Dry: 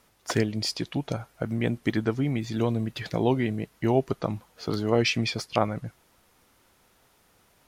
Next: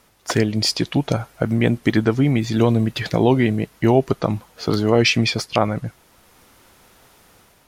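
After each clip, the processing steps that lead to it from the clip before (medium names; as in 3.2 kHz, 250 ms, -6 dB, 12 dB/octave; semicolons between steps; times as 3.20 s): in parallel at 0 dB: peak limiter -15 dBFS, peak gain reduction 8 dB; on the sum: level rider gain up to 5 dB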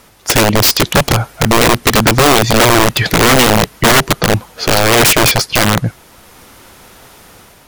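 in parallel at -1 dB: peak limiter -10 dBFS, peak gain reduction 8 dB; on the sum: integer overflow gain 9.5 dB; trim +6.5 dB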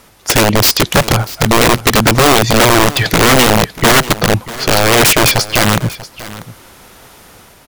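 delay 640 ms -17 dB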